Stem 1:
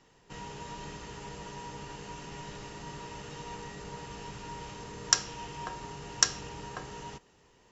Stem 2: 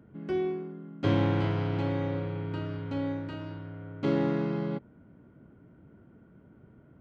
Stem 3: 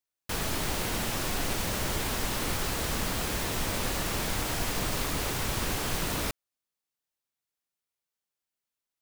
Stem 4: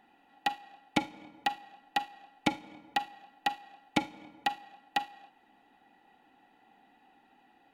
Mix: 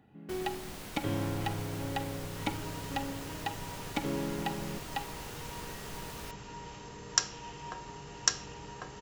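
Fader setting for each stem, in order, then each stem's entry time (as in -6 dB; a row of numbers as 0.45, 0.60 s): -3.0, -8.0, -14.0, -6.5 dB; 2.05, 0.00, 0.00, 0.00 s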